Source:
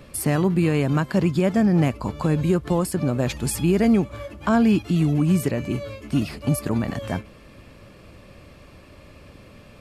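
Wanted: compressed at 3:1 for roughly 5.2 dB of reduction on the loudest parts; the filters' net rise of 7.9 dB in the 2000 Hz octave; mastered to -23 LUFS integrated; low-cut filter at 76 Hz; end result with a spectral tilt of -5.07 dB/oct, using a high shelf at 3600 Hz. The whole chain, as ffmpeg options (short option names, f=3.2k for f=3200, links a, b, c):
-af "highpass=76,equalizer=f=2k:t=o:g=8,highshelf=f=3.6k:g=7,acompressor=threshold=-21dB:ratio=3,volume=2.5dB"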